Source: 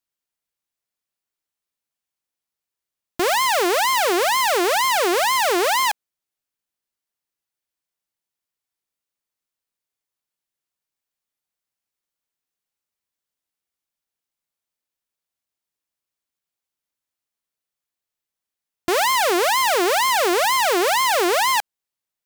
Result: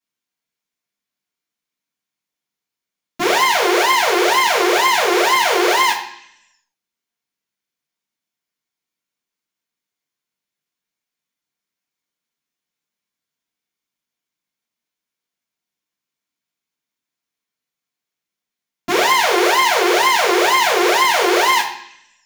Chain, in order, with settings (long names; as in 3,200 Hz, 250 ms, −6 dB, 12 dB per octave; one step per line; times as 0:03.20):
convolution reverb RT60 0.70 s, pre-delay 3 ms, DRR −9 dB
level −10.5 dB